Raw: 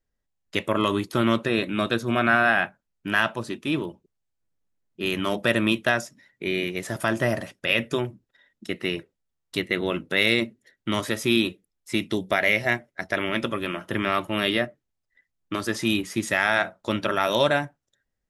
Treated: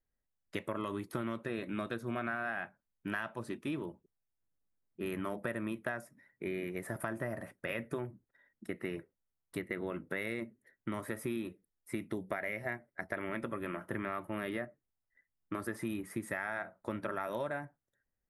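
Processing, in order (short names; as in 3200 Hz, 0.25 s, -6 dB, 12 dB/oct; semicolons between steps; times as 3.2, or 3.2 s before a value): band shelf 4400 Hz -8 dB, from 3.89 s -15 dB; compressor, threshold -27 dBFS, peak gain reduction 12 dB; gain -6.5 dB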